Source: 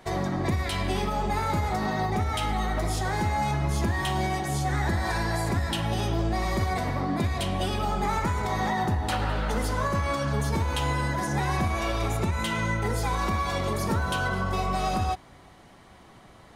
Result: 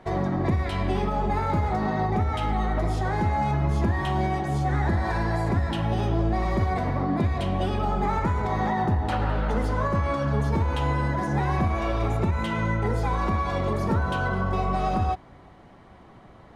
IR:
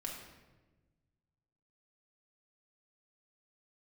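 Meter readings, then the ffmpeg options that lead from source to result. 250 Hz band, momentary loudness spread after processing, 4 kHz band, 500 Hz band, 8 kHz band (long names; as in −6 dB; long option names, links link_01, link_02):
+3.0 dB, 2 LU, −6.0 dB, +2.5 dB, below −10 dB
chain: -af "lowpass=frequency=1300:poles=1,volume=3dB"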